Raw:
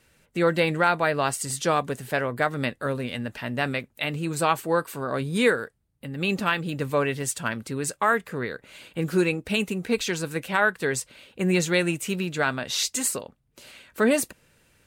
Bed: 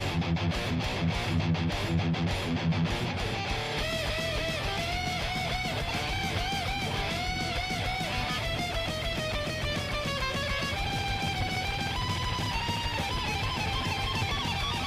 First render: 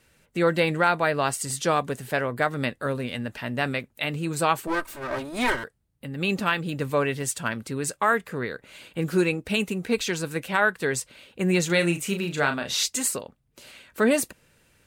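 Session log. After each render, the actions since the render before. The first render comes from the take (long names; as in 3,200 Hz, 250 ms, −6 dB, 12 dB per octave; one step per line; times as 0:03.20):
0:04.67–0:05.64: lower of the sound and its delayed copy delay 3.2 ms
0:11.66–0:12.86: double-tracking delay 35 ms −7 dB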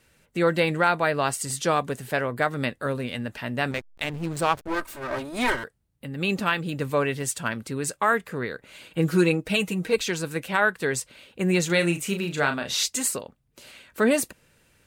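0:03.71–0:04.81: slack as between gear wheels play −26.5 dBFS
0:08.90–0:09.96: comb filter 6.3 ms, depth 71%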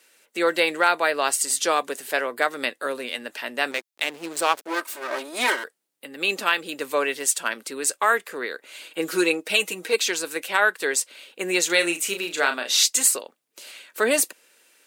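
high-pass filter 310 Hz 24 dB per octave
high-shelf EQ 2,200 Hz +8 dB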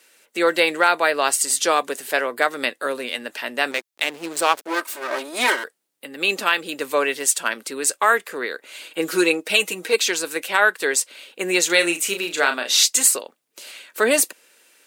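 level +3 dB
brickwall limiter −3 dBFS, peak gain reduction 1.5 dB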